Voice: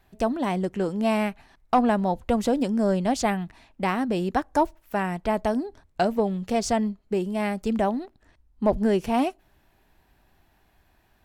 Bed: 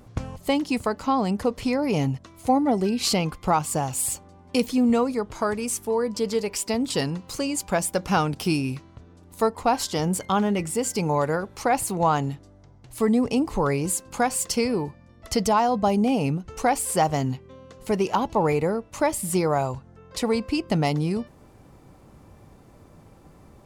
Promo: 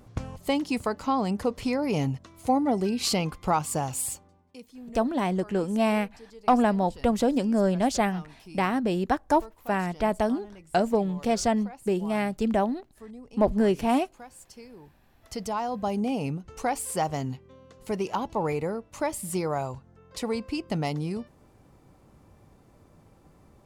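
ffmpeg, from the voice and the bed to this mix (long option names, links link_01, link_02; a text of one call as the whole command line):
ffmpeg -i stem1.wav -i stem2.wav -filter_complex "[0:a]adelay=4750,volume=-0.5dB[link_01];[1:a]volume=14.5dB,afade=type=out:start_time=3.92:duration=0.63:silence=0.0944061,afade=type=in:start_time=14.77:duration=1.3:silence=0.133352[link_02];[link_01][link_02]amix=inputs=2:normalize=0" out.wav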